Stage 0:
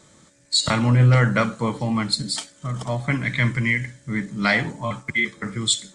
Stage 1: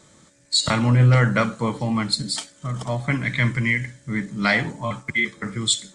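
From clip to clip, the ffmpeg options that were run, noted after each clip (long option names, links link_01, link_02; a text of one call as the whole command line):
ffmpeg -i in.wav -af anull out.wav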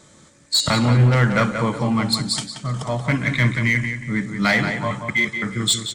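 ffmpeg -i in.wav -filter_complex "[0:a]asplit=2[link_01][link_02];[link_02]aeval=exprs='0.141*(abs(mod(val(0)/0.141+3,4)-2)-1)':channel_layout=same,volume=-9dB[link_03];[link_01][link_03]amix=inputs=2:normalize=0,asplit=2[link_04][link_05];[link_05]adelay=180,lowpass=frequency=4100:poles=1,volume=-7dB,asplit=2[link_06][link_07];[link_07]adelay=180,lowpass=frequency=4100:poles=1,volume=0.32,asplit=2[link_08][link_09];[link_09]adelay=180,lowpass=frequency=4100:poles=1,volume=0.32,asplit=2[link_10][link_11];[link_11]adelay=180,lowpass=frequency=4100:poles=1,volume=0.32[link_12];[link_04][link_06][link_08][link_10][link_12]amix=inputs=5:normalize=0" out.wav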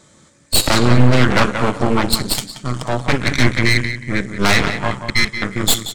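ffmpeg -i in.wav -af "aeval=exprs='0.668*(cos(1*acos(clip(val(0)/0.668,-1,1)))-cos(1*PI/2))+0.266*(cos(6*acos(clip(val(0)/0.668,-1,1)))-cos(6*PI/2))':channel_layout=same" out.wav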